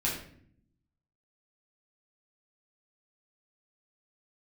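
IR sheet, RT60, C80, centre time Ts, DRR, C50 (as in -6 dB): 0.60 s, 8.5 dB, 37 ms, -5.5 dB, 4.5 dB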